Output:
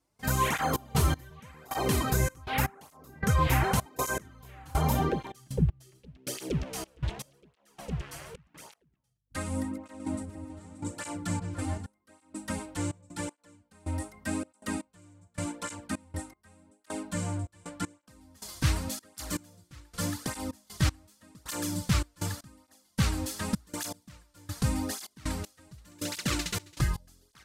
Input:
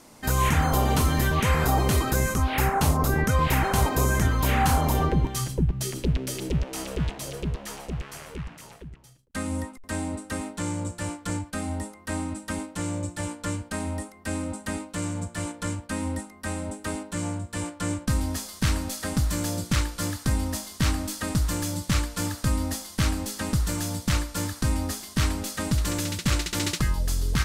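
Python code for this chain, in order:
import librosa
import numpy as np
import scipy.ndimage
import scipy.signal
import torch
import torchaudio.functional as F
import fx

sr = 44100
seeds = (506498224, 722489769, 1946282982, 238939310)

y = fx.add_hum(x, sr, base_hz=50, snr_db=31)
y = fx.step_gate(y, sr, bpm=79, pattern='.xxx.x..', floor_db=-24.0, edge_ms=4.5)
y = fx.echo_opening(y, sr, ms=145, hz=400, octaves=2, feedback_pct=70, wet_db=-6, at=(9.42, 11.86))
y = fx.flanger_cancel(y, sr, hz=0.86, depth_ms=5.1)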